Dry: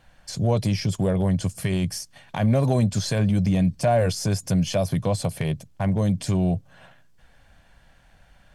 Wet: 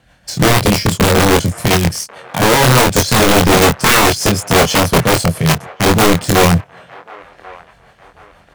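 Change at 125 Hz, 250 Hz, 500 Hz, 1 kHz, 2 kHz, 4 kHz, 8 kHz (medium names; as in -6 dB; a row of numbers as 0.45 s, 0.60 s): +7.0 dB, +8.5 dB, +12.0 dB, +18.0 dB, +22.0 dB, +19.0 dB, +18.0 dB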